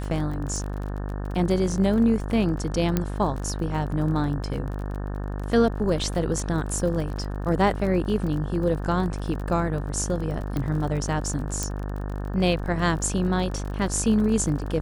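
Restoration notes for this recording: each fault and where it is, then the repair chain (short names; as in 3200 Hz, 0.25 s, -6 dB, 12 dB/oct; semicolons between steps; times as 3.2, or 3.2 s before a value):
buzz 50 Hz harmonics 36 -30 dBFS
crackle 30/s -32 dBFS
2.97 pop -9 dBFS
10.57 pop -16 dBFS
11.63 pop -12 dBFS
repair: de-click; de-hum 50 Hz, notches 36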